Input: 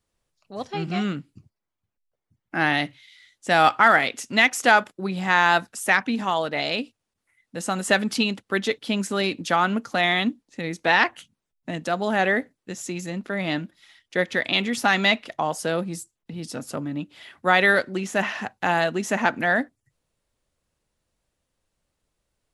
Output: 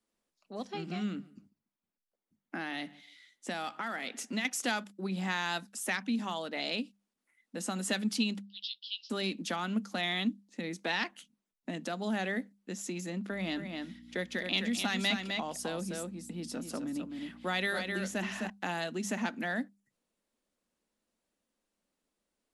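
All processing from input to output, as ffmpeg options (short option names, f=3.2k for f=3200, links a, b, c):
-filter_complex "[0:a]asettb=1/sr,asplit=3[a][b][c];[a]atrim=end=0.804[d];[b]atrim=start=0.8:end=4.45,asetpts=PTS-STARTPTS,afade=t=in:d=0.004:c=qsin,afade=t=out:st=3.646:d=0.004:c=qsin,acompressor=threshold=-27dB:ratio=2:attack=3.2:release=140:knee=1:detection=peak,asplit=2[e][f];[f]adelay=143,lowpass=f=3.3k:p=1,volume=-24dB,asplit=2[g][h];[h]adelay=143,lowpass=f=3.3k:p=1,volume=0.25[i];[e][g][i]amix=inputs=3:normalize=0,atrim=end_sample=160965[j];[c]atrim=start=4.446[k];[d][j]acrossfade=d=0.004:c1=hsin:c2=qsin[l];[l][k]acrossfade=d=0.004:c1=qsin:c2=hsin,asettb=1/sr,asplit=3[m][n][o];[m]atrim=end=8.464[p];[n]atrim=start=8.46:end=9.1,asetpts=PTS-STARTPTS,afade=t=in:d=0.004:c=qsin,afade=t=out:st=0.636:d=0.004:c=qsin,asuperpass=centerf=3900:order=12:qfactor=1.6,asplit=2[q][r];[r]adelay=16,volume=-4.5dB[s];[q][s]amix=inputs=2:normalize=0,atrim=end_sample=28224[t];[o]atrim=start=9.096[u];[p][t]acrossfade=d=0.004:c1=hsin:c2=qsin[v];[v][u]acrossfade=d=0.004:c1=qsin:c2=hsin,asettb=1/sr,asplit=3[w][x][y];[w]atrim=end=13.314[z];[x]atrim=start=13.31:end=18.5,asetpts=PTS-STARTPTS,afade=t=in:d=0.004:c=qsin,afade=t=out:st=5.186:d=0.004:c=qsin,aeval=exprs='val(0)+0.00794*(sin(2*PI*60*n/s)+sin(2*PI*2*60*n/s)/2+sin(2*PI*3*60*n/s)/3+sin(2*PI*4*60*n/s)/4+sin(2*PI*5*60*n/s)/5)':c=same,aecho=1:1:258:0.447,atrim=end_sample=228879[aa];[y]atrim=start=18.496[ab];[z][aa]acrossfade=d=0.004:c1=hsin:c2=qsin[ac];[ac][ab]acrossfade=d=0.004:c1=qsin:c2=hsin,lowshelf=f=160:t=q:w=3:g=-9.5,bandreject=f=50:t=h:w=6,bandreject=f=100:t=h:w=6,bandreject=f=150:t=h:w=6,bandreject=f=200:t=h:w=6,acrossover=split=170|3000[ad][ae][af];[ae]acompressor=threshold=-32dB:ratio=2.5[ag];[ad][ag][af]amix=inputs=3:normalize=0,volume=-6dB"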